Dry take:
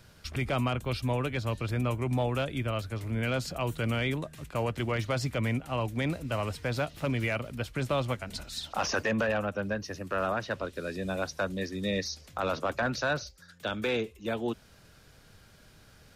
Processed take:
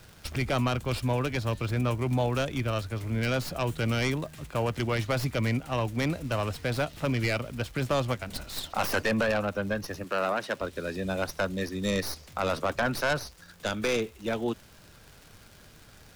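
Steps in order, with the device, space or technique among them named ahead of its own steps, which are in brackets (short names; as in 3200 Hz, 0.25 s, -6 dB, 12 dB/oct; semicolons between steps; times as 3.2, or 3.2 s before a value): record under a worn stylus (tracing distortion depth 0.12 ms; crackle 130/s -42 dBFS; pink noise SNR 30 dB); 10.04–10.61 HPF 210 Hz 12 dB/oct; gain +2 dB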